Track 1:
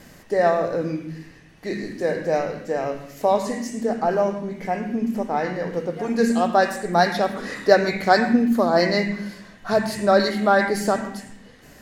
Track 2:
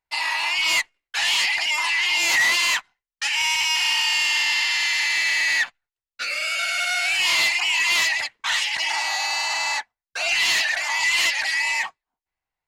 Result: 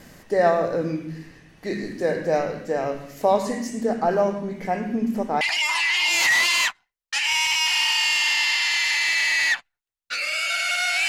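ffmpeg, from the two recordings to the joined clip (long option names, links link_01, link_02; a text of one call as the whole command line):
ffmpeg -i cue0.wav -i cue1.wav -filter_complex "[0:a]apad=whole_dur=11.08,atrim=end=11.08,atrim=end=5.412[link_01];[1:a]atrim=start=1.498:end=7.17[link_02];[link_01][link_02]acrossfade=duration=0.004:curve1=hsin:curve2=hsin" out.wav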